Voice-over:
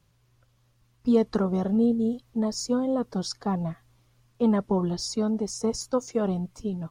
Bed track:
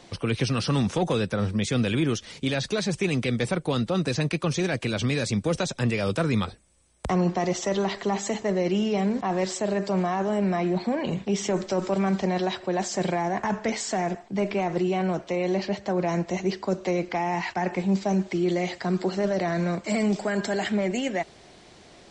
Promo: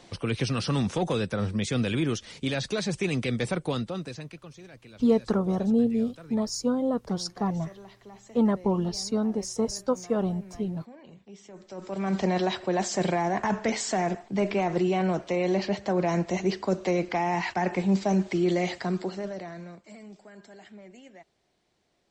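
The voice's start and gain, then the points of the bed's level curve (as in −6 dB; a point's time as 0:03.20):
3.95 s, −0.5 dB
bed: 0:03.69 −2.5 dB
0:04.55 −22 dB
0:11.52 −22 dB
0:12.20 0 dB
0:18.75 0 dB
0:20.00 −22.5 dB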